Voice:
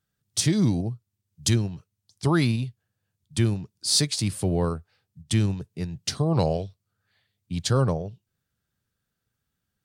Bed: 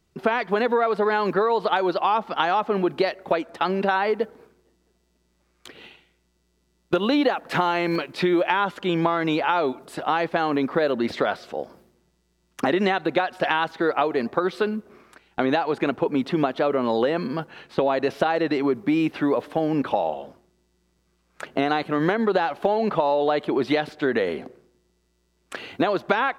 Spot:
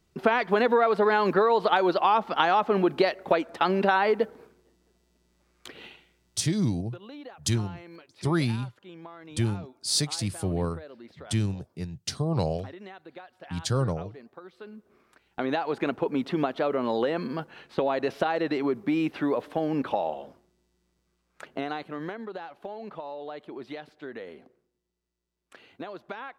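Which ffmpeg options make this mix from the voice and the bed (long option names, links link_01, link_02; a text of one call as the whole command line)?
ffmpeg -i stem1.wav -i stem2.wav -filter_complex "[0:a]adelay=6000,volume=-4dB[link_01];[1:a]volume=18dB,afade=type=out:start_time=6.43:duration=0.26:silence=0.0749894,afade=type=in:start_time=14.59:duration=1.16:silence=0.11885,afade=type=out:start_time=20.67:duration=1.62:silence=0.237137[link_02];[link_01][link_02]amix=inputs=2:normalize=0" out.wav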